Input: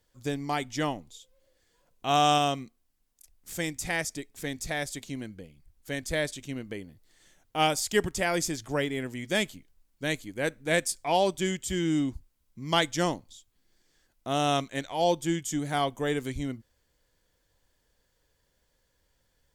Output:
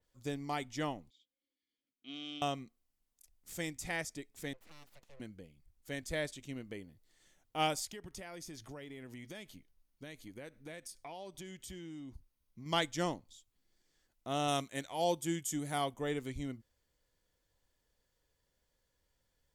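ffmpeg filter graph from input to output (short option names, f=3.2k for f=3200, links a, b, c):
-filter_complex "[0:a]asettb=1/sr,asplit=3[a][b][c];[a]atrim=end=1.104[d];[b]atrim=start=1.1:end=2.42,asetpts=PTS-STARTPTS,afade=t=in:d=0.004:c=qsin,afade=t=out:st=1.316:d=0.004:c=qsin,aeval=exprs='if(lt(val(0),0),0.708*val(0),val(0))':c=same,asplit=3[e][f][g];[e]bandpass=f=270:t=q:w=8,volume=0dB[h];[f]bandpass=f=2.29k:t=q:w=8,volume=-6dB[i];[g]bandpass=f=3.01k:t=q:w=8,volume=-9dB[j];[h][i][j]amix=inputs=3:normalize=0,equalizer=f=4.7k:w=1.5:g=9[k];[c]atrim=start=2.416[l];[d][k]acrossfade=d=0.004:c1=hsin:c2=qsin[m];[m][l]acrossfade=d=0.004:c1=qsin:c2=hsin,asettb=1/sr,asplit=3[n][o][p];[n]atrim=end=4.534[q];[o]atrim=start=4.53:end=5.2,asetpts=PTS-STARTPTS,afade=t=in:d=0.004:c=qsin,afade=t=out:st=0.666:d=0.004:c=qsin,acrossover=split=230 2400:gain=0.0794 1 0.112[r][s][t];[r][s][t]amix=inputs=3:normalize=0,acrossover=split=200|3000[u][v][w];[v]acompressor=threshold=-49dB:ratio=6:attack=3.2:release=140:knee=2.83:detection=peak[x];[u][x][w]amix=inputs=3:normalize=0,aeval=exprs='abs(val(0))':c=same[y];[p]atrim=start=5.196[z];[q][y]acrossfade=d=0.004:c1=hsin:c2=qsin[aa];[aa][z]acrossfade=d=0.004:c1=qsin:c2=hsin,asettb=1/sr,asplit=3[ab][ac][ad];[ab]atrim=end=7.854[ae];[ac]atrim=start=7.85:end=12.66,asetpts=PTS-STARTPTS,afade=t=in:d=0.004:c=qsin,afade=t=out:st=4.806:d=0.004:c=qsin,bandreject=f=7.5k:w=5.8,acompressor=threshold=-36dB:ratio=8:attack=3.2:release=140:knee=1:detection=peak[af];[ad]atrim=start=12.656[ag];[ae][af]acrossfade=d=0.004:c1=hsin:c2=qsin[ah];[ah][ag]acrossfade=d=0.004:c1=qsin:c2=hsin,asettb=1/sr,asplit=3[ai][aj][ak];[ai]atrim=end=14.484[al];[aj]atrim=start=14.48:end=15.94,asetpts=PTS-STARTPTS,afade=t=in:d=0.004:c=qsin,afade=t=out:st=1.456:d=0.004:c=qsin,highpass=41,equalizer=f=11k:w=0.71:g=12[am];[ak]atrim=start=15.936[an];[al][am]acrossfade=d=0.004:c1=hsin:c2=qsin[ao];[ao][an]acrossfade=d=0.004:c1=qsin:c2=hsin,bandreject=f=1.6k:w=23,adynamicequalizer=threshold=0.00708:dfrequency=3700:dqfactor=0.7:tfrequency=3700:tqfactor=0.7:attack=5:release=100:ratio=0.375:range=2:mode=cutabove:tftype=highshelf,volume=-7.5dB"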